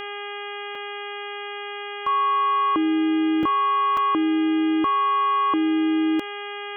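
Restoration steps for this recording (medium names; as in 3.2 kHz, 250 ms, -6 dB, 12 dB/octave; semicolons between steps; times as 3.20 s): de-hum 408.3 Hz, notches 8; interpolate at 0.75/3.43/3.97 s, 3.3 ms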